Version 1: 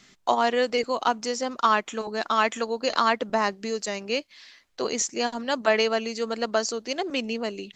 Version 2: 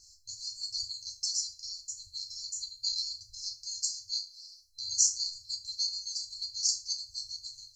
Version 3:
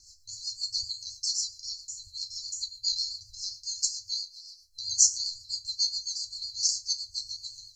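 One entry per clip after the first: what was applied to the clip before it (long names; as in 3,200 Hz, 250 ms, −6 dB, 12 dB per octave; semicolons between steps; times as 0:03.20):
brick-wall band-stop 110–4,100 Hz; feedback delay network reverb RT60 0.34 s, low-frequency decay 0.75×, high-frequency decay 0.95×, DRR −1.5 dB
rotating-speaker cabinet horn 7.5 Hz; level +5.5 dB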